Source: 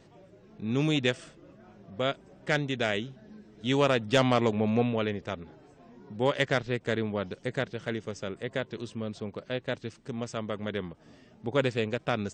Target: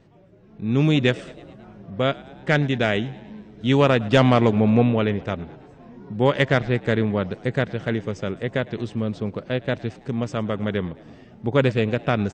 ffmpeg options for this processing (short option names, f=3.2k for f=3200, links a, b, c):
-filter_complex "[0:a]bass=f=250:g=5,treble=f=4k:g=-8,asplit=6[a][b][c][d][e][f];[b]adelay=108,afreqshift=68,volume=-22dB[g];[c]adelay=216,afreqshift=136,volume=-26.4dB[h];[d]adelay=324,afreqshift=204,volume=-30.9dB[i];[e]adelay=432,afreqshift=272,volume=-35.3dB[j];[f]adelay=540,afreqshift=340,volume=-39.7dB[k];[a][g][h][i][j][k]amix=inputs=6:normalize=0,dynaudnorm=f=260:g=5:m=8dB,volume=-1dB"